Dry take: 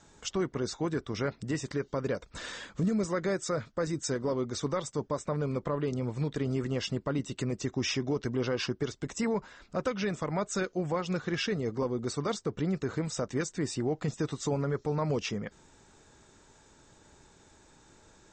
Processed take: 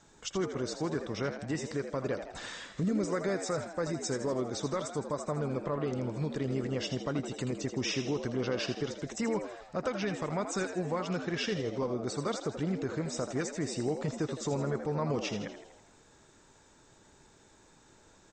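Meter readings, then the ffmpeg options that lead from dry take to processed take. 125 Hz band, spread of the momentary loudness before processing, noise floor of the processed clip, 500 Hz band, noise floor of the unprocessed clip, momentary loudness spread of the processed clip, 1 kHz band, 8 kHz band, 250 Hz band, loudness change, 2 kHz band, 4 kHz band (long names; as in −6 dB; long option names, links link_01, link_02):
−2.5 dB, 4 LU, −61 dBFS, −1.0 dB, −60 dBFS, 4 LU, −0.5 dB, −1.0 dB, −1.5 dB, −1.5 dB, −1.0 dB, −1.0 dB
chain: -filter_complex "[0:a]equalizer=frequency=61:width_type=o:width=1.3:gain=-3.5,asplit=2[link_01][link_02];[link_02]asplit=6[link_03][link_04][link_05][link_06][link_07][link_08];[link_03]adelay=81,afreqshift=81,volume=-9dB[link_09];[link_04]adelay=162,afreqshift=162,volume=-14.4dB[link_10];[link_05]adelay=243,afreqshift=243,volume=-19.7dB[link_11];[link_06]adelay=324,afreqshift=324,volume=-25.1dB[link_12];[link_07]adelay=405,afreqshift=405,volume=-30.4dB[link_13];[link_08]adelay=486,afreqshift=486,volume=-35.8dB[link_14];[link_09][link_10][link_11][link_12][link_13][link_14]amix=inputs=6:normalize=0[link_15];[link_01][link_15]amix=inputs=2:normalize=0,volume=-2dB"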